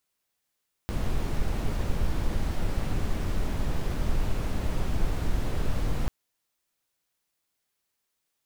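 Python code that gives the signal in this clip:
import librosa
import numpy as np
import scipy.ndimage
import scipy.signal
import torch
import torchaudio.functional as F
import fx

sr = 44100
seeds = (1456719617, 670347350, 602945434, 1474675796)

y = fx.noise_colour(sr, seeds[0], length_s=5.19, colour='brown', level_db=-25.0)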